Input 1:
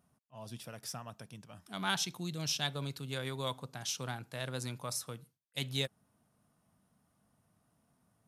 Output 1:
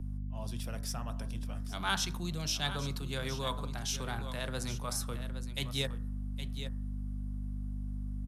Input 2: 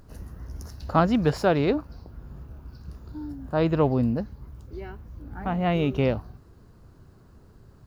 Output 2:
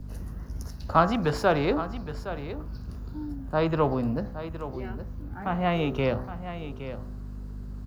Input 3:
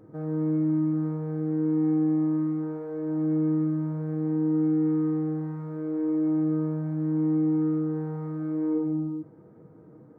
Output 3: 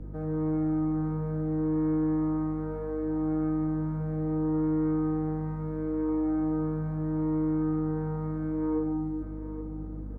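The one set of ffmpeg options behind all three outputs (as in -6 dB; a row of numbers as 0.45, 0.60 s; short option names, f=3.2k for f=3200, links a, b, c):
-filter_complex "[0:a]bandreject=f=63.09:t=h:w=4,bandreject=f=126.18:t=h:w=4,bandreject=f=189.27:t=h:w=4,bandreject=f=252.36:t=h:w=4,bandreject=f=315.45:t=h:w=4,bandreject=f=378.54:t=h:w=4,bandreject=f=441.63:t=h:w=4,bandreject=f=504.72:t=h:w=4,bandreject=f=567.81:t=h:w=4,bandreject=f=630.9:t=h:w=4,bandreject=f=693.99:t=h:w=4,bandreject=f=757.08:t=h:w=4,bandreject=f=820.17:t=h:w=4,bandreject=f=883.26:t=h:w=4,bandreject=f=946.35:t=h:w=4,bandreject=f=1.00944k:t=h:w=4,bandreject=f=1.07253k:t=h:w=4,bandreject=f=1.13562k:t=h:w=4,bandreject=f=1.19871k:t=h:w=4,bandreject=f=1.2618k:t=h:w=4,bandreject=f=1.32489k:t=h:w=4,bandreject=f=1.38798k:t=h:w=4,bandreject=f=1.45107k:t=h:w=4,bandreject=f=1.51416k:t=h:w=4,bandreject=f=1.57725k:t=h:w=4,bandreject=f=1.64034k:t=h:w=4,bandreject=f=1.70343k:t=h:w=4,bandreject=f=1.76652k:t=h:w=4,bandreject=f=1.82961k:t=h:w=4,bandreject=f=1.8927k:t=h:w=4,bandreject=f=1.95579k:t=h:w=4,adynamicequalizer=threshold=0.00562:dfrequency=1200:dqfactor=1.8:tfrequency=1200:tqfactor=1.8:attack=5:release=100:ratio=0.375:range=2:mode=boostabove:tftype=bell,aeval=exprs='val(0)+0.01*(sin(2*PI*50*n/s)+sin(2*PI*2*50*n/s)/2+sin(2*PI*3*50*n/s)/3+sin(2*PI*4*50*n/s)/4+sin(2*PI*5*50*n/s)/5)':c=same,acrossover=split=100|400[a][b][c];[b]asoftclip=type=tanh:threshold=-27dB[d];[a][d][c]amix=inputs=3:normalize=0,aecho=1:1:816:0.237,areverse,acompressor=mode=upward:threshold=-31dB:ratio=2.5,areverse"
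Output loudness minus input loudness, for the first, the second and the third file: +1.0, -4.0, -3.0 LU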